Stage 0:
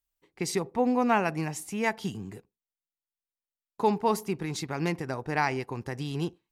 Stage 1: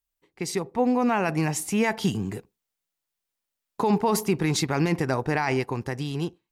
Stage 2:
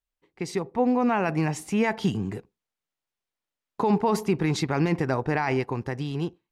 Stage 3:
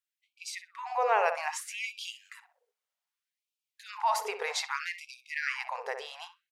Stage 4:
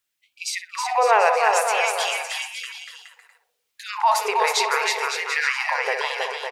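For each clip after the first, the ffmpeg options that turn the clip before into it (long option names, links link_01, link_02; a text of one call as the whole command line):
ffmpeg -i in.wav -af "dynaudnorm=framelen=350:gausssize=7:maxgain=11.5dB,alimiter=limit=-13.5dB:level=0:latency=1:release=15" out.wav
ffmpeg -i in.wav -af "aemphasis=mode=reproduction:type=50kf" out.wav
ffmpeg -i in.wav -filter_complex "[0:a]asplit=2[link_01][link_02];[link_02]adelay=63,lowpass=frequency=1300:poles=1,volume=-6dB,asplit=2[link_03][link_04];[link_04]adelay=63,lowpass=frequency=1300:poles=1,volume=0.4,asplit=2[link_05][link_06];[link_06]adelay=63,lowpass=frequency=1300:poles=1,volume=0.4,asplit=2[link_07][link_08];[link_08]adelay=63,lowpass=frequency=1300:poles=1,volume=0.4,asplit=2[link_09][link_10];[link_10]adelay=63,lowpass=frequency=1300:poles=1,volume=0.4[link_11];[link_01][link_03][link_05][link_07][link_09][link_11]amix=inputs=6:normalize=0,afftfilt=real='re*gte(b*sr/1024,400*pow(2300/400,0.5+0.5*sin(2*PI*0.63*pts/sr)))':imag='im*gte(b*sr/1024,400*pow(2300/400,0.5+0.5*sin(2*PI*0.63*pts/sr)))':win_size=1024:overlap=0.75" out.wav
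ffmpeg -i in.wav -filter_complex "[0:a]asplit=2[link_01][link_02];[link_02]acompressor=threshold=-37dB:ratio=6,volume=-2dB[link_03];[link_01][link_03]amix=inputs=2:normalize=0,aecho=1:1:320|560|740|875|976.2:0.631|0.398|0.251|0.158|0.1,volume=7.5dB" out.wav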